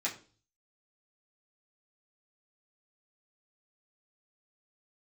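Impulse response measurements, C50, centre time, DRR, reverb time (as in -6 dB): 12.0 dB, 18 ms, -6.5 dB, 0.40 s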